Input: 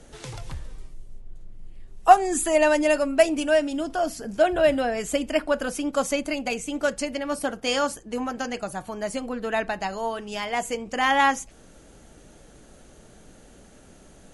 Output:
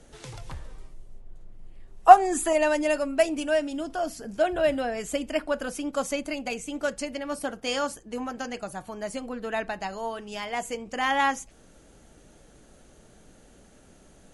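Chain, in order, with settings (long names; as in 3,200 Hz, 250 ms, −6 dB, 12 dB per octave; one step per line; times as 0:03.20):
0:00.49–0:02.53: parametric band 860 Hz +6 dB 2.5 octaves
level −4 dB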